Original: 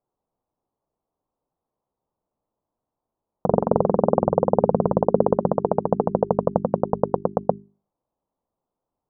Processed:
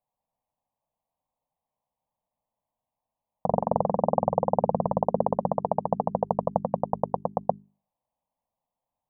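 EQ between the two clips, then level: bass shelf 190 Hz -6.5 dB; static phaser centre 1.4 kHz, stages 6; 0.0 dB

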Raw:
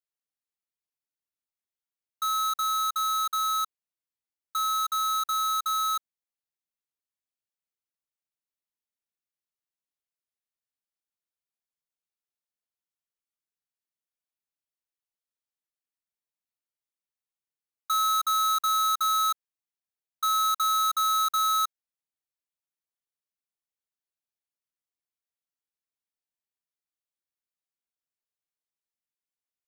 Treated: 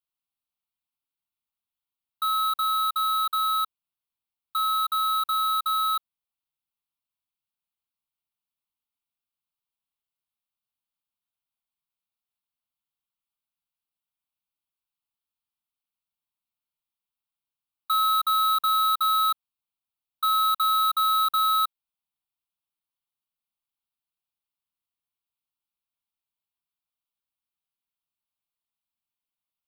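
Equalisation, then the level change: static phaser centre 1.8 kHz, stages 6; +4.0 dB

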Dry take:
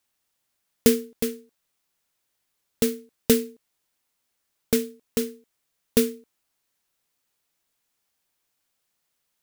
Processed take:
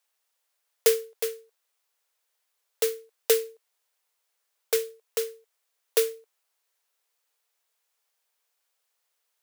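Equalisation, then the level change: elliptic high-pass 430 Hz; 0.0 dB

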